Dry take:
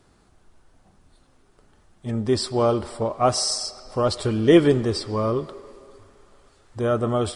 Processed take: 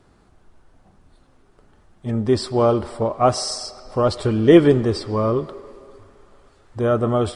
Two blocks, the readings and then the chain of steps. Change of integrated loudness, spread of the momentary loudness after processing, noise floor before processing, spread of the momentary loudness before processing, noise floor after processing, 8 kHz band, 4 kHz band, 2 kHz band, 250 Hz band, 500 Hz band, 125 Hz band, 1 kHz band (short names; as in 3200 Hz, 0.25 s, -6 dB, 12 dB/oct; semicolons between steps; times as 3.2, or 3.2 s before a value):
+3.0 dB, 14 LU, -59 dBFS, 12 LU, -56 dBFS, -3.0 dB, -1.5 dB, +1.5 dB, +3.5 dB, +3.5 dB, +3.5 dB, +3.0 dB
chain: high shelf 3400 Hz -8 dB; gain +3.5 dB